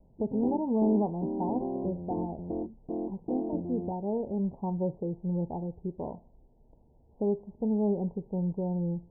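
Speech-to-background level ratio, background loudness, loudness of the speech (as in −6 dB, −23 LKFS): 4.0 dB, −36.0 LKFS, −32.0 LKFS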